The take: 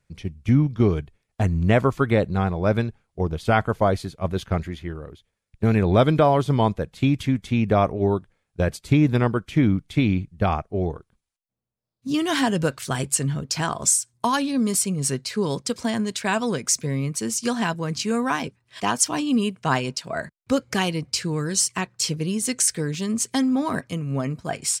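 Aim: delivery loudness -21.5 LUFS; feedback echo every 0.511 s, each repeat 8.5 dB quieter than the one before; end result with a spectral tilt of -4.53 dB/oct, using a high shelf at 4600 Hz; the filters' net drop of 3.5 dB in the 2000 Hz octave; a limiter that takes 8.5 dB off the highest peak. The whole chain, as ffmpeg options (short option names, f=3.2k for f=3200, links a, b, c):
-af "equalizer=f=2k:t=o:g=-6,highshelf=f=4.6k:g=7,alimiter=limit=-10dB:level=0:latency=1,aecho=1:1:511|1022|1533|2044:0.376|0.143|0.0543|0.0206,volume=1.5dB"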